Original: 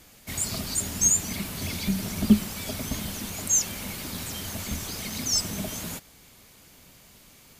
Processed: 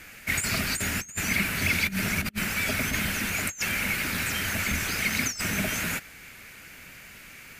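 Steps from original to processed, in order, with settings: compressor with a negative ratio -29 dBFS, ratio -0.5; high-order bell 1.9 kHz +12.5 dB 1.2 oct

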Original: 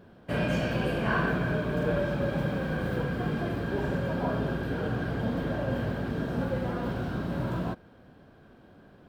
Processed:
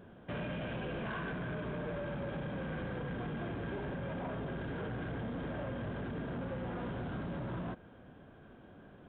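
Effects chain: compression, threshold -30 dBFS, peak gain reduction 7.5 dB; saturation -34 dBFS, distortion -11 dB; resampled via 8 kHz; trim -1 dB

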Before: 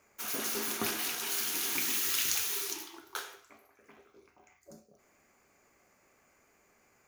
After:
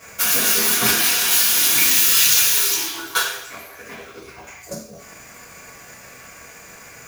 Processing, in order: peaking EQ 390 Hz -7 dB 2.6 oct; power-law waveshaper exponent 0.7; two-slope reverb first 0.38 s, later 1.9 s, from -25 dB, DRR -9 dB; transient shaper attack +5 dB, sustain -1 dB; trim +3 dB

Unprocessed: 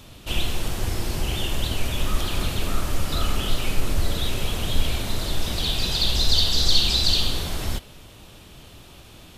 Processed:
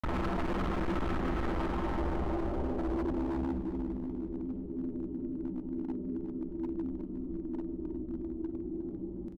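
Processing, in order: graphic EQ 125/250/500 Hz -8/+7/+11 dB; level rider gain up to 5 dB; inharmonic resonator 60 Hz, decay 0.25 s, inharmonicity 0.008; small resonant body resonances 350/1300 Hz, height 15 dB, ringing for 90 ms; Paulstretch 24×, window 0.25 s, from 7.70 s; comb 1 ms, depth 61%; low-pass sweep 1.3 kHz -> 290 Hz, 1.69–3.42 s; granulator 100 ms, grains 20 per s; on a send at -9.5 dB: reverberation RT60 2.5 s, pre-delay 3 ms; on the sum: hard clipper -30 dBFS, distortion -5 dB; feedback delay 359 ms, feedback 35%, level -11.5 dB

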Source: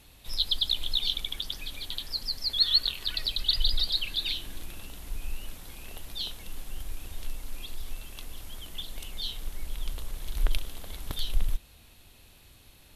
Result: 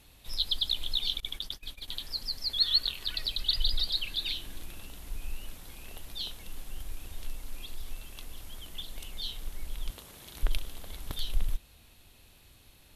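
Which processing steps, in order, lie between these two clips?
1.20–1.88 s: gate -35 dBFS, range -23 dB; 9.90–10.43 s: high-pass 120 Hz 12 dB/octave; trim -2.5 dB

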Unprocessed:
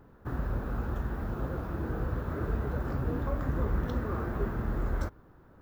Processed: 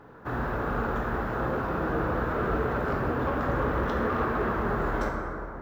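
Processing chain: overdrive pedal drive 20 dB, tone 2.4 kHz, clips at -18 dBFS; plate-style reverb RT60 3.1 s, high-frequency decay 0.35×, pre-delay 0 ms, DRR 0 dB; trim -2 dB

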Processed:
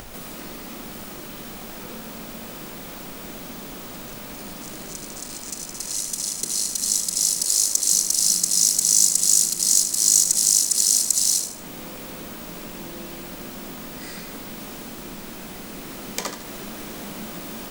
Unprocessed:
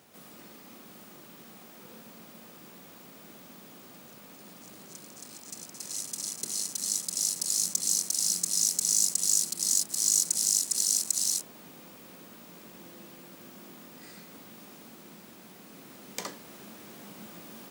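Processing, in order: 7.44–7.92 s: high-pass 270 Hz 24 dB/octave; added noise brown -60 dBFS; in parallel at +1 dB: upward compressor, threshold -31 dBFS; on the sum: thinning echo 77 ms, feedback 39%, level -8 dB; trim +1 dB

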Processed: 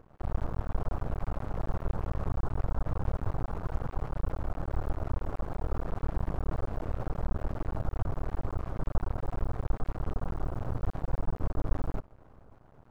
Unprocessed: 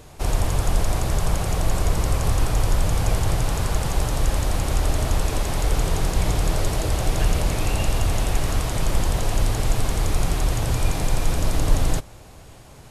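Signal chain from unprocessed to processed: median filter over 25 samples; resonant high shelf 1.8 kHz -8 dB, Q 3; half-wave rectifier; trim -7.5 dB

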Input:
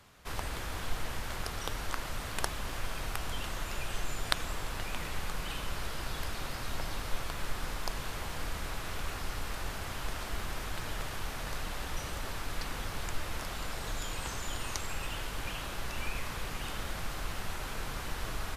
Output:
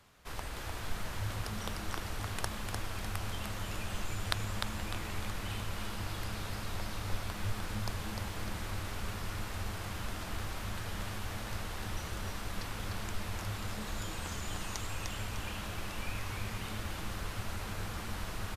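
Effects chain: frequency-shifting echo 301 ms, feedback 41%, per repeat -110 Hz, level -4 dB; trim -4 dB

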